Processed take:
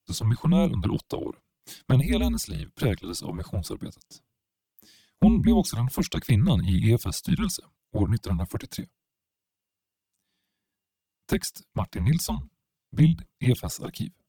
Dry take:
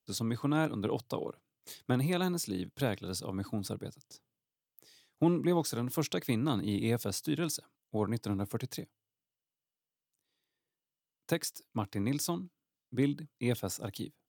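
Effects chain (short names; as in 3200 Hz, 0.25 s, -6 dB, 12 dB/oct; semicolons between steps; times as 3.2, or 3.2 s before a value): envelope flanger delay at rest 9.6 ms, full sweep at -25.5 dBFS; resonant low shelf 170 Hz -9.5 dB, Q 3; frequency shift -120 Hz; gain +8 dB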